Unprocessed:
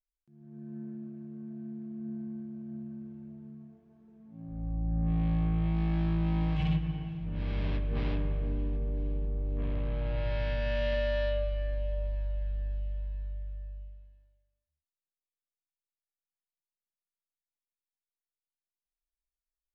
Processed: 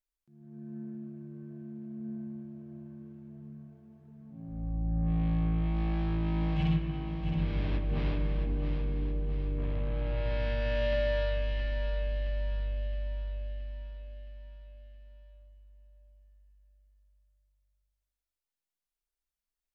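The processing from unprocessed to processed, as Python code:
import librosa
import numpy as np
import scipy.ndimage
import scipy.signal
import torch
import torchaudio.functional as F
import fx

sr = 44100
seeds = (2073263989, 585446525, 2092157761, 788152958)

y = fx.echo_feedback(x, sr, ms=669, feedback_pct=52, wet_db=-7.0)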